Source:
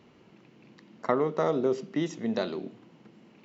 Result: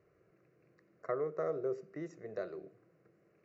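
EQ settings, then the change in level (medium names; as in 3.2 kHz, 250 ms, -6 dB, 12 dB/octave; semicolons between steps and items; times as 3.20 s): treble shelf 2.3 kHz -9.5 dB; static phaser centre 890 Hz, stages 6; -7.0 dB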